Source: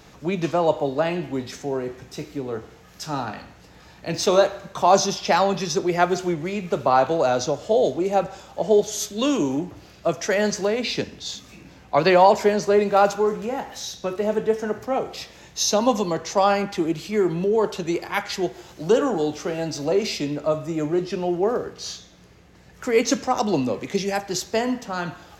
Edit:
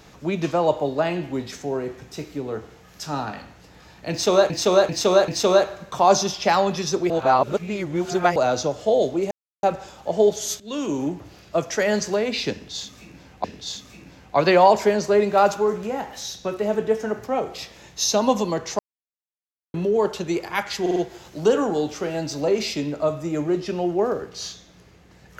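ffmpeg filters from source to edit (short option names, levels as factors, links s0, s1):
-filter_complex "[0:a]asplit=14[s0][s1][s2][s3][s4][s5][s6][s7][s8][s9][s10][s11][s12][s13];[s0]atrim=end=4.502[s14];[s1]atrim=start=4.108:end=4.502[s15];[s2]atrim=start=4.108:end=4.502[s16];[s3]atrim=start=4.108:end=5.932[s17];[s4]atrim=start=5.928:end=7.192,asetpts=PTS-STARTPTS,areverse[s18];[s5]atrim=start=7.188:end=8.14,asetpts=PTS-STARTPTS,afade=t=out:st=0.948:d=0.004:c=hsin,apad=pad_dur=0.32[s19];[s6]atrim=start=8.14:end=9.11,asetpts=PTS-STARTPTS,afade=t=in:d=0.004:c=hsin,afade=t=out:st=0.966:d=0.004:c=hsin:silence=0.158489[s20];[s7]atrim=start=9.11:end=11.952,asetpts=PTS-STARTPTS,afade=t=in:d=0.48:silence=0.158489[s21];[s8]atrim=start=11.028:end=16.38,asetpts=PTS-STARTPTS,afade=t=out:st=5.348:d=0.004:c=hsin[s22];[s9]atrim=start=16.38:end=17.33,asetpts=PTS-STARTPTS,volume=0[s23];[s10]atrim=start=17.33:end=18.452,asetpts=PTS-STARTPTS,afade=t=in:d=0.004:c=hsin[s24];[s11]atrim=start=18.398:end=18.452[s25];[s12]atrim=start=18.398:end=18.452[s26];[s13]atrim=start=18.398[s27];[s14][s15]acrossfade=d=0.004:c1=hsin:c2=hsin[s28];[s28][s16]acrossfade=d=0.004:c1=hsin:c2=hsin[s29];[s29][s17]acrossfade=d=0.004:c1=hsin:c2=hsin[s30];[s30][s18]acrossfade=d=0.004:c1=hsin:c2=hsin[s31];[s19][s20][s21]concat=n=3:v=0:a=1[s32];[s31][s32]acrossfade=d=0.004:c1=hsin:c2=hsin[s33];[s22][s23][s24]concat=n=3:v=0:a=1[s34];[s33][s34]acrossfade=d=0.004:c1=hsin:c2=hsin[s35];[s35][s25]acrossfade=d=0.004:c1=hsin:c2=hsin[s36];[s36][s26]acrossfade=d=0.004:c1=hsin:c2=hsin[s37];[s37][s27]acrossfade=d=0.004:c1=hsin:c2=hsin"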